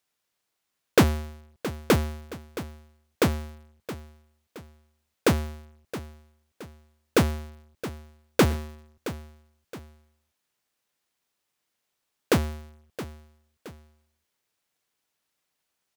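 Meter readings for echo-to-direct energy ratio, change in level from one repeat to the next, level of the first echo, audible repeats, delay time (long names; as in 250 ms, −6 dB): −13.5 dB, −8.0 dB, −14.0 dB, 2, 670 ms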